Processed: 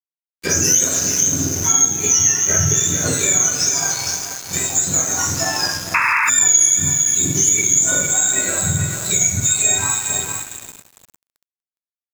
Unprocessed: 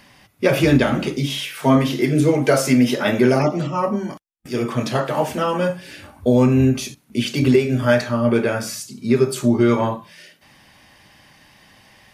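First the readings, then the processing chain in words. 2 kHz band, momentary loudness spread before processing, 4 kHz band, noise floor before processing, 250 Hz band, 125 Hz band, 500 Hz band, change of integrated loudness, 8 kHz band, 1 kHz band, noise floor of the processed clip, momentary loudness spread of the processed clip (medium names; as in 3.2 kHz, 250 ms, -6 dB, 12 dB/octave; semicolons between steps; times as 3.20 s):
+4.5 dB, 10 LU, +5.5 dB, -54 dBFS, -11.5 dB, -4.0 dB, -11.5 dB, +4.0 dB, +24.0 dB, -1.5 dB, under -85 dBFS, 8 LU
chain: spectrum inverted on a logarithmic axis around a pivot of 940 Hz; resonant high shelf 4.6 kHz +12 dB, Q 3; on a send: feedback delay 455 ms, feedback 19%, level -9.5 dB; on the sum: two-slope reverb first 0.37 s, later 4.7 s, from -18 dB, DRR -7.5 dB; crossover distortion -19.5 dBFS; painted sound noise, 5.94–6.30 s, 870–2700 Hz -6 dBFS; compression 2.5:1, threshold -13 dBFS, peak gain reduction 13 dB; trim -3.5 dB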